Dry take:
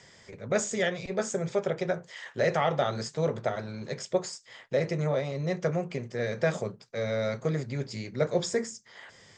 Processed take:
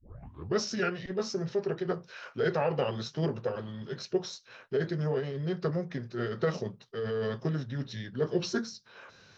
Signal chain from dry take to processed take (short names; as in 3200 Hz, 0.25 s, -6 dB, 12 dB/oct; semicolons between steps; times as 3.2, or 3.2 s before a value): tape start at the beginning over 0.56 s; formant shift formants -4 st; gain -2 dB